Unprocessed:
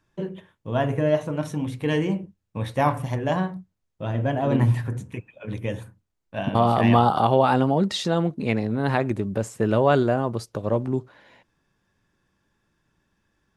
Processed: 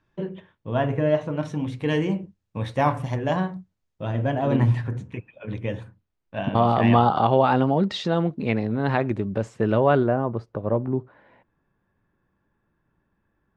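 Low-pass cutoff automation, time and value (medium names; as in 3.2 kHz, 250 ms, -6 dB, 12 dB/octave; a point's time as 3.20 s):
1.20 s 3.9 kHz
1.90 s 7 kHz
4.35 s 7 kHz
5.07 s 4 kHz
9.67 s 4 kHz
10.18 s 1.6 kHz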